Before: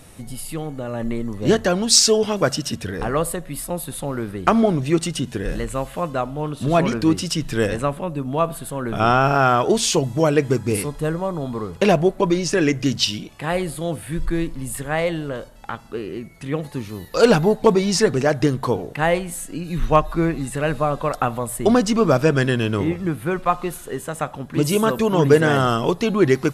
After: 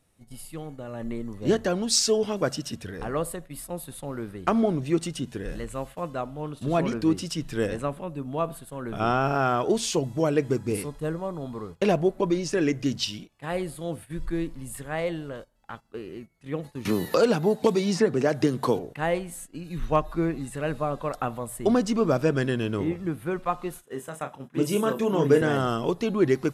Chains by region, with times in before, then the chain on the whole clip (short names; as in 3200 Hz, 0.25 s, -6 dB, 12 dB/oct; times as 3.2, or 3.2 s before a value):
16.85–18.79 HPF 110 Hz + three-band squash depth 100%
23.84–25.42 HPF 130 Hz + notch 4400 Hz, Q 9 + doubler 30 ms -8 dB
whole clip: dynamic EQ 320 Hz, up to +4 dB, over -25 dBFS, Q 0.71; gate -31 dBFS, range -14 dB; gain -9 dB